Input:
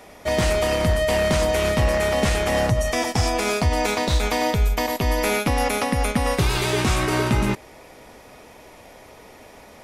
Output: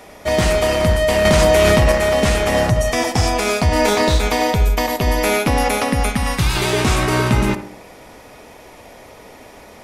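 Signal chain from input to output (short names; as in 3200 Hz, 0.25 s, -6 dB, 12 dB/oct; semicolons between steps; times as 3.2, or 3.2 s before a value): 3.69–4.1 doubler 29 ms -2.5 dB; 6.09–6.56 bell 450 Hz -12 dB 1.2 oct; tape echo 68 ms, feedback 58%, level -9 dB, low-pass 1500 Hz; 1.25–1.92 fast leveller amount 100%; gain +4 dB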